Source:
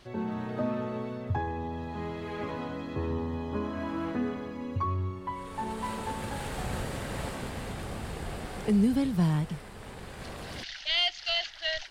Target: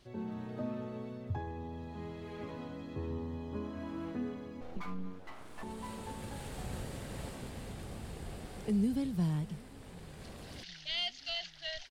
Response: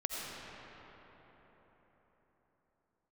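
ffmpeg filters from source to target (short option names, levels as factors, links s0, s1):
-filter_complex "[0:a]equalizer=f=1300:w=0.55:g=-6,asettb=1/sr,asplit=3[s0][s1][s2];[s0]atrim=end=4.614[s3];[s1]atrim=start=4.61:end=5.63,asetpts=PTS-STARTPTS,afade=t=in:d=0.004:c=qsin,afade=t=out:st=1.016:d=0.004:c=qsin,aeval=exprs='abs(val(0))':c=same[s4];[s2]atrim=start=5.626[s5];[s3][s4]acrossfade=d=0.004:c1=hsin:c2=qsin[s6];[s6][s5]acrossfade=d=0.004:c1=qsin:c2=hsin,aecho=1:1:749|1498|2247:0.0631|0.0334|0.0177,volume=0.501"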